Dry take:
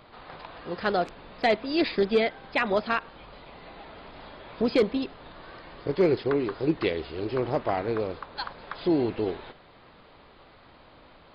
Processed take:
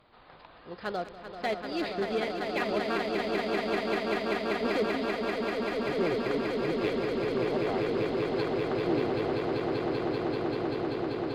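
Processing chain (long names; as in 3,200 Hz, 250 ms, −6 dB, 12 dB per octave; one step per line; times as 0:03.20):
harmonic generator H 5 −25 dB, 7 −25 dB, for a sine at −14 dBFS
echo that builds up and dies away 194 ms, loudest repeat 8, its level −5 dB
level −8.5 dB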